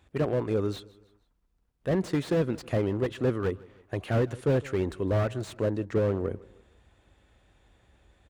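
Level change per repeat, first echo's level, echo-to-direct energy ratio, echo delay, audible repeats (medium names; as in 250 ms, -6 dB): -7.5 dB, -22.0 dB, -21.0 dB, 157 ms, 2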